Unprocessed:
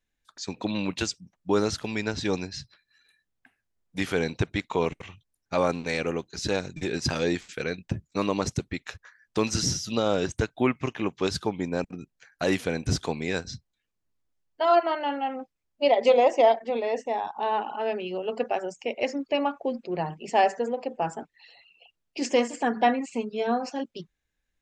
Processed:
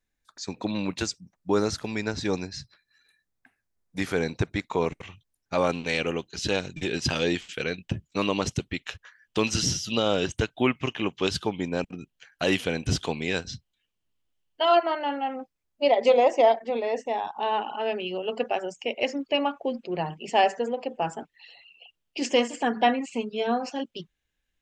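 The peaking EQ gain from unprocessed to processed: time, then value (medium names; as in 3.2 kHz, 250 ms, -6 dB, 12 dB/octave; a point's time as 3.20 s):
peaking EQ 3 kHz 0.42 oct
-5 dB
from 4.99 s +1.5 dB
from 5.64 s +11.5 dB
from 14.77 s 0 dB
from 17.08 s +7 dB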